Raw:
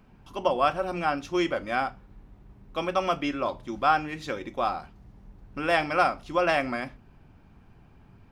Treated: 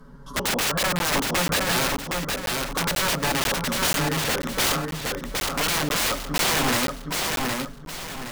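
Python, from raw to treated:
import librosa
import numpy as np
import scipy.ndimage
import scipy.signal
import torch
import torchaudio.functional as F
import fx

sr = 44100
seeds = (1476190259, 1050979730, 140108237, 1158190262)

p1 = fx.env_lowpass_down(x, sr, base_hz=1300.0, full_db=-25.0)
p2 = p1 + 0.95 * np.pad(p1, (int(7.2 * sr / 1000.0), 0))[:len(p1)]
p3 = fx.rider(p2, sr, range_db=4, speed_s=2.0)
p4 = p2 + F.gain(torch.from_numpy(p3), -1.5).numpy()
p5 = 10.0 ** (-11.5 / 20.0) * (np.abs((p4 / 10.0 ** (-11.5 / 20.0) + 3.0) % 4.0 - 2.0) - 1.0)
p6 = fx.fixed_phaser(p5, sr, hz=500.0, stages=8)
p7 = (np.mod(10.0 ** (22.5 / 20.0) * p6 + 1.0, 2.0) - 1.0) / 10.0 ** (22.5 / 20.0)
p8 = p7 + fx.echo_feedback(p7, sr, ms=766, feedback_pct=36, wet_db=-3, dry=0)
p9 = fx.buffer_crackle(p8, sr, first_s=0.99, period_s=0.49, block=512, kind='zero')
y = F.gain(torch.from_numpy(p9), 4.0).numpy()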